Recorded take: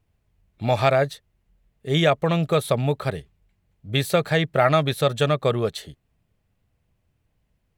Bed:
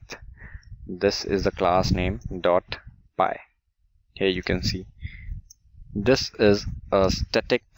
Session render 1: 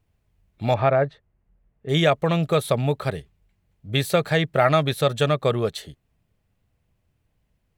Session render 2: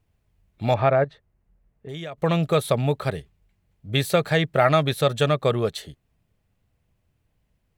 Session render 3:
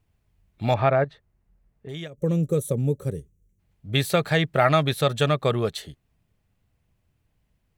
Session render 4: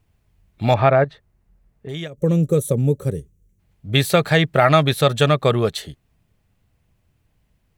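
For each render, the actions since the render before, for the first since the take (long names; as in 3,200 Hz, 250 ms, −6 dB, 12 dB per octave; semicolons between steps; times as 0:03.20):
0:00.74–0:01.89: low-pass filter 1,700 Hz
0:01.04–0:02.18: downward compressor 4 to 1, threshold −34 dBFS
0:02.07–0:03.59: gain on a spectral selection 570–5,600 Hz −18 dB; parametric band 530 Hz −2.5 dB 0.68 octaves
level +5.5 dB; brickwall limiter −2 dBFS, peak gain reduction 2 dB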